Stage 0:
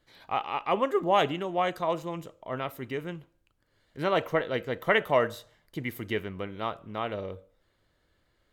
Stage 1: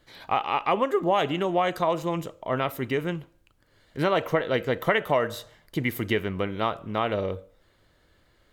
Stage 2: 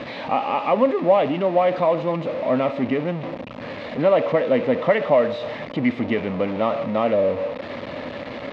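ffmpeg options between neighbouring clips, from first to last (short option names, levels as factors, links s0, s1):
-af "acompressor=threshold=0.0398:ratio=4,volume=2.51"
-af "aeval=exprs='val(0)+0.5*0.0631*sgn(val(0))':c=same,highpass=160,equalizer=f=250:t=q:w=4:g=9,equalizer=f=370:t=q:w=4:g=-6,equalizer=f=570:t=q:w=4:g=9,equalizer=f=1500:t=q:w=4:g=-9,equalizer=f=3100:t=q:w=4:g=-5,lowpass=f=3200:w=0.5412,lowpass=f=3200:w=1.3066"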